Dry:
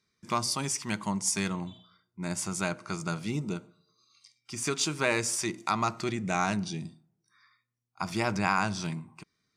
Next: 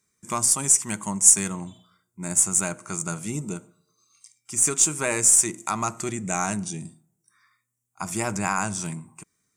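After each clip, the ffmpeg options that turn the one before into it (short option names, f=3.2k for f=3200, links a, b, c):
-af "highshelf=f=5.9k:t=q:w=3:g=10,aeval=exprs='0.75*(cos(1*acos(clip(val(0)/0.75,-1,1)))-cos(1*PI/2))+0.00531*(cos(6*acos(clip(val(0)/0.75,-1,1)))-cos(6*PI/2))+0.0119*(cos(8*acos(clip(val(0)/0.75,-1,1)))-cos(8*PI/2))':c=same,volume=1.5dB"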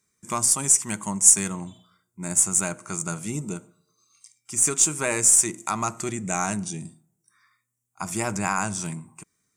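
-af anull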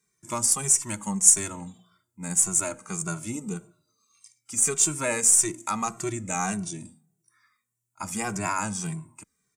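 -filter_complex "[0:a]asplit=2[a][b];[b]adelay=2.1,afreqshift=-1.7[c];[a][c]amix=inputs=2:normalize=1,volume=1dB"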